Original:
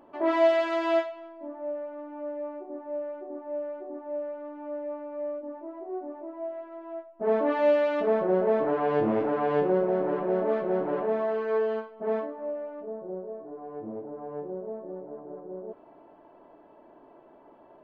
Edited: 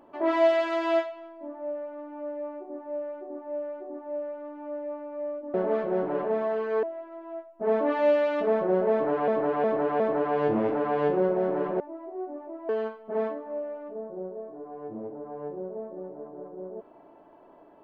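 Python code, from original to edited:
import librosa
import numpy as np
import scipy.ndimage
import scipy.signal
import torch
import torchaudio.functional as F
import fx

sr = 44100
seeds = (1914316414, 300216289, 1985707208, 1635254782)

y = fx.edit(x, sr, fx.swap(start_s=5.54, length_s=0.89, other_s=10.32, other_length_s=1.29),
    fx.repeat(start_s=8.52, length_s=0.36, count=4), tone=tone)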